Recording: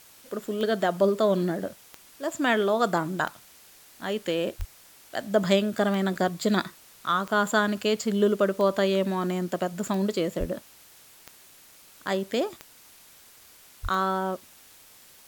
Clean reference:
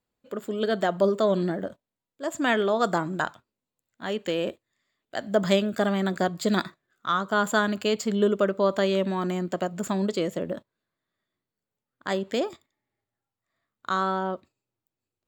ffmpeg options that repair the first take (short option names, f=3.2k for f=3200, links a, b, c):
-filter_complex "[0:a]adeclick=t=4,asplit=3[a][b][c];[a]afade=t=out:st=4.58:d=0.02[d];[b]highpass=f=140:w=0.5412,highpass=f=140:w=1.3066,afade=t=in:st=4.58:d=0.02,afade=t=out:st=4.7:d=0.02[e];[c]afade=t=in:st=4.7:d=0.02[f];[d][e][f]amix=inputs=3:normalize=0,asplit=3[g][h][i];[g]afade=t=out:st=10.39:d=0.02[j];[h]highpass=f=140:w=0.5412,highpass=f=140:w=1.3066,afade=t=in:st=10.39:d=0.02,afade=t=out:st=10.51:d=0.02[k];[i]afade=t=in:st=10.51:d=0.02[l];[j][k][l]amix=inputs=3:normalize=0,asplit=3[m][n][o];[m]afade=t=out:st=13.82:d=0.02[p];[n]highpass=f=140:w=0.5412,highpass=f=140:w=1.3066,afade=t=in:st=13.82:d=0.02,afade=t=out:st=13.94:d=0.02[q];[o]afade=t=in:st=13.94:d=0.02[r];[p][q][r]amix=inputs=3:normalize=0,afwtdn=0.0025"